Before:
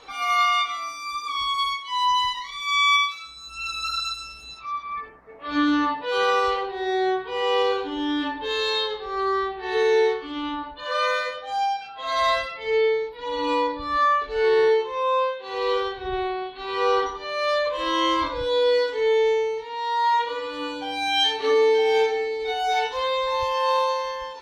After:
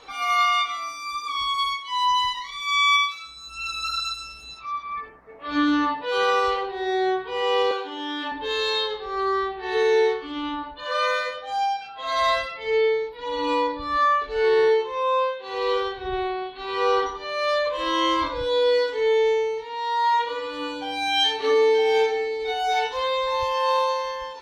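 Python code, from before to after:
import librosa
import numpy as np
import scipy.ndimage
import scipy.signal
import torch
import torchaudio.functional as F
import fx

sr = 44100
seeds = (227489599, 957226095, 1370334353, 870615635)

y = fx.highpass(x, sr, hz=450.0, slope=12, at=(7.71, 8.32))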